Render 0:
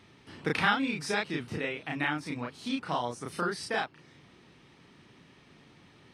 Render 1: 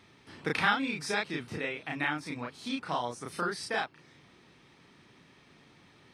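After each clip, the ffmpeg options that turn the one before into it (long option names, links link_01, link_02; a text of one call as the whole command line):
ffmpeg -i in.wav -af "lowshelf=frequency=460:gain=-3.5,bandreject=frequency=2900:width=21" out.wav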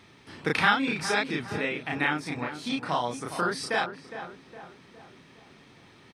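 ffmpeg -i in.wav -filter_complex "[0:a]asplit=2[link_01][link_02];[link_02]adelay=411,lowpass=frequency=1600:poles=1,volume=-10dB,asplit=2[link_03][link_04];[link_04]adelay=411,lowpass=frequency=1600:poles=1,volume=0.51,asplit=2[link_05][link_06];[link_06]adelay=411,lowpass=frequency=1600:poles=1,volume=0.51,asplit=2[link_07][link_08];[link_08]adelay=411,lowpass=frequency=1600:poles=1,volume=0.51,asplit=2[link_09][link_10];[link_10]adelay=411,lowpass=frequency=1600:poles=1,volume=0.51,asplit=2[link_11][link_12];[link_12]adelay=411,lowpass=frequency=1600:poles=1,volume=0.51[link_13];[link_01][link_03][link_05][link_07][link_09][link_11][link_13]amix=inputs=7:normalize=0,volume=4.5dB" out.wav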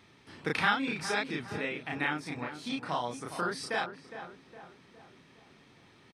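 ffmpeg -i in.wav -af "aresample=32000,aresample=44100,volume=-5dB" out.wav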